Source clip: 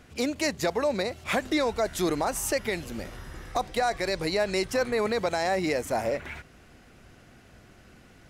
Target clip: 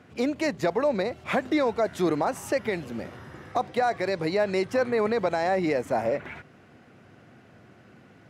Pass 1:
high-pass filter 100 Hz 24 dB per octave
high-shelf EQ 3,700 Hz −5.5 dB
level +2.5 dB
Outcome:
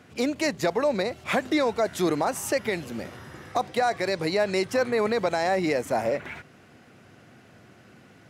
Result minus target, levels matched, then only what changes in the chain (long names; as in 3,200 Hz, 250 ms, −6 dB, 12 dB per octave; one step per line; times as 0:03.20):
8,000 Hz band +7.0 dB
change: high-shelf EQ 3,700 Hz −15 dB